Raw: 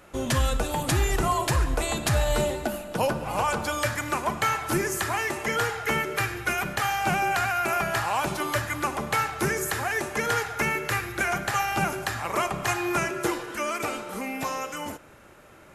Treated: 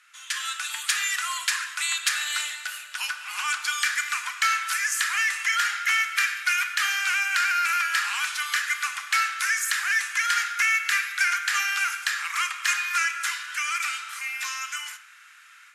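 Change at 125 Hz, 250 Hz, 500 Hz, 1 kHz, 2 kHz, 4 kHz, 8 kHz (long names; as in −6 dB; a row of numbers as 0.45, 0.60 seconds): below −40 dB, below −40 dB, below −35 dB, −3.0 dB, +5.5 dB, +6.5 dB, +5.0 dB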